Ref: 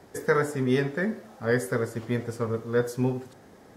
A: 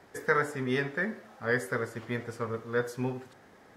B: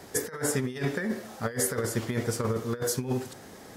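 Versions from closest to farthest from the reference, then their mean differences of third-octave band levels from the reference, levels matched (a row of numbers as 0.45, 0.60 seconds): A, B; 2.5, 8.5 decibels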